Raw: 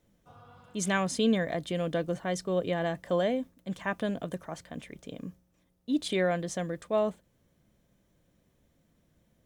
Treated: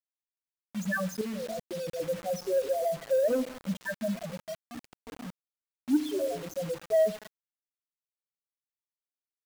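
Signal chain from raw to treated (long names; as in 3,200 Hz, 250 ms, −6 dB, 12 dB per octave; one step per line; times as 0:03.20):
0:05.97–0:06.46: sub-harmonics by changed cycles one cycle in 2, muted
high-pass filter 250 Hz 6 dB per octave
spectral peaks only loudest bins 2
feedback delay network reverb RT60 0.99 s, low-frequency decay 1.35×, high-frequency decay 0.85×, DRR 14 dB
0:01.21–0:02.00: output level in coarse steps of 21 dB
0:03.30–0:03.77: leveller curve on the samples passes 1
low-pass filter 6,200 Hz 12 dB per octave
harmonic generator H 3 −44 dB, 5 −26 dB, 7 −45 dB, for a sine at −21 dBFS
bit-depth reduction 8 bits, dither none
level +5.5 dB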